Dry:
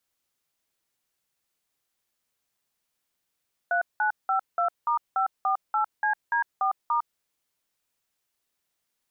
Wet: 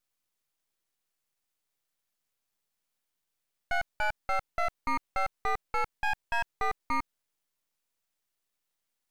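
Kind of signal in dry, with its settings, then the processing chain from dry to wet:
touch tones "3952*548CD4*", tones 105 ms, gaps 185 ms, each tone −24 dBFS
half-wave rectification

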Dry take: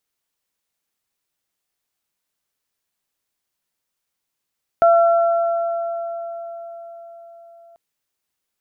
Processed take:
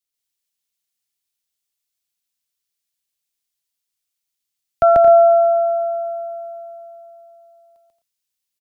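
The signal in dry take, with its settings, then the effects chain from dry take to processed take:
harmonic partials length 2.94 s, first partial 677 Hz, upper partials −9 dB, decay 4.91 s, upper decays 3.45 s, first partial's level −9 dB
low-shelf EQ 190 Hz +6.5 dB
on a send: loudspeakers that aren't time-aligned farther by 48 metres −1 dB, 77 metres −9 dB, 88 metres −12 dB
on the sum: multiband upward and downward expander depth 40%

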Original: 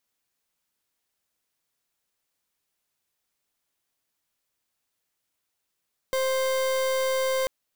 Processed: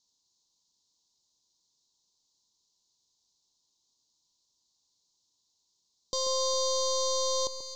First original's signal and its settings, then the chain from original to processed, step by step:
pulse wave 525 Hz, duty 39% −25 dBFS 1.34 s
brickwall limiter −28.5 dBFS
drawn EQ curve 360 Hz 0 dB, 660 Hz −8 dB, 1,000 Hz +3 dB, 1,500 Hz −29 dB, 2,200 Hz −24 dB, 4,000 Hz +12 dB, 6,800 Hz +11 dB, 9,700 Hz −20 dB
delay that swaps between a low-pass and a high-pass 135 ms, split 1,500 Hz, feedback 76%, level −9 dB

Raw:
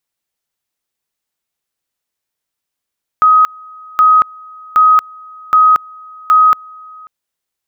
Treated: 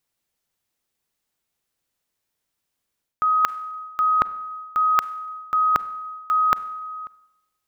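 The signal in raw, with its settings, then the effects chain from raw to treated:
tone at two levels in turn 1,260 Hz −4.5 dBFS, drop 27 dB, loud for 0.23 s, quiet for 0.54 s, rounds 5
low-shelf EQ 440 Hz +4.5 dB
reversed playback
downward compressor 12 to 1, threshold −18 dBFS
reversed playback
four-comb reverb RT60 0.88 s, combs from 32 ms, DRR 18 dB

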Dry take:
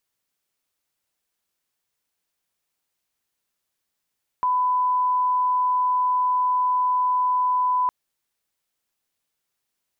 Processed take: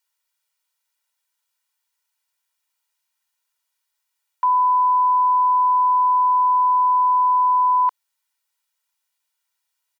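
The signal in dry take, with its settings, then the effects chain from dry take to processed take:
line-up tone −18 dBFS 3.46 s
high-pass filter 710 Hz 24 dB per octave
comb filter 2.1 ms, depth 81%

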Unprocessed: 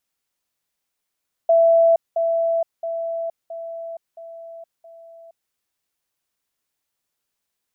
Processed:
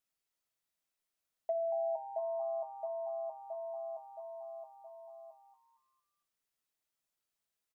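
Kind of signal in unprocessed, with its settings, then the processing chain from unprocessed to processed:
level staircase 665 Hz −11 dBFS, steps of −6 dB, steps 6, 0.47 s 0.20 s
downward compressor 2.5 to 1, threshold −32 dBFS
tuned comb filter 650 Hz, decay 0.24 s, harmonics all, mix 70%
on a send: echo with shifted repeats 230 ms, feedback 38%, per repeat +130 Hz, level −11.5 dB

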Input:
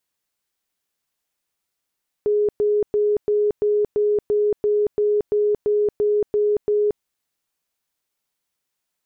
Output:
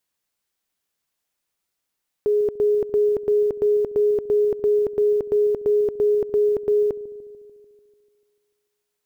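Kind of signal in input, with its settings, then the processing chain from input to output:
tone bursts 417 Hz, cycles 95, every 0.34 s, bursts 14, −15.5 dBFS
one scale factor per block 7 bits
delay with a low-pass on its return 147 ms, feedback 63%, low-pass 500 Hz, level −15 dB

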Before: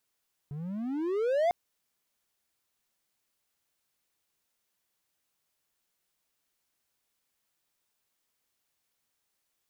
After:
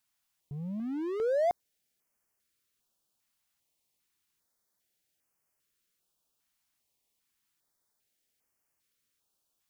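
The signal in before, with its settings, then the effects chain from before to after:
pitch glide with a swell triangle, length 1.00 s, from 139 Hz, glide +28.5 semitones, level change +13.5 dB, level −20 dB
notch on a step sequencer 2.5 Hz 440–3,700 Hz

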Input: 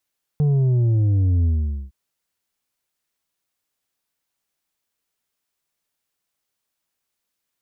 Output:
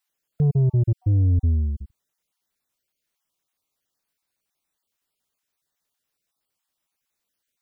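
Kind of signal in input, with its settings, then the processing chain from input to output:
bass drop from 150 Hz, over 1.51 s, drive 5.5 dB, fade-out 0.46 s, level −15.5 dB
time-frequency cells dropped at random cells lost 24%

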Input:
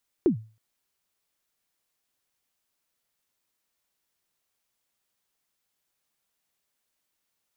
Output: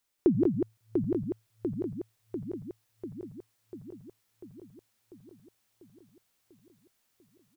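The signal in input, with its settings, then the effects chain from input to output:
synth kick length 0.32 s, from 400 Hz, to 110 Hz, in 105 ms, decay 0.35 s, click off, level −13.5 dB
feedback delay that plays each chunk backwards 347 ms, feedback 79%, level −3 dB
on a send: single-tap delay 193 ms −3.5 dB

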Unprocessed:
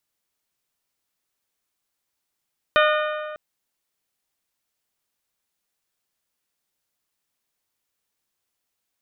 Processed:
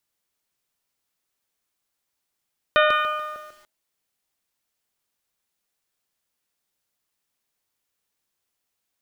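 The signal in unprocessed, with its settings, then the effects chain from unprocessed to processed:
struck metal bell, length 0.60 s, lowest mode 610 Hz, modes 7, decay 2.01 s, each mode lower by 2 dB, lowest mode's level −16 dB
hum removal 315.4 Hz, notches 15
feedback echo at a low word length 145 ms, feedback 35%, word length 8 bits, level −6 dB

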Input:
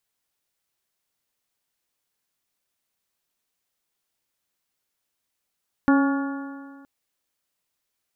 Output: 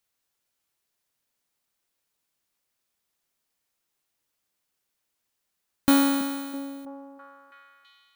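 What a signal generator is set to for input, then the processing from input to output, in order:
stiff-string partials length 0.97 s, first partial 275 Hz, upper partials −13/−11.5/−13/−11/−18.5 dB, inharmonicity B 0.0026, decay 1.80 s, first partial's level −13.5 dB
samples in bit-reversed order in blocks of 16 samples
on a send: echo through a band-pass that steps 328 ms, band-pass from 260 Hz, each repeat 0.7 octaves, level −10 dB

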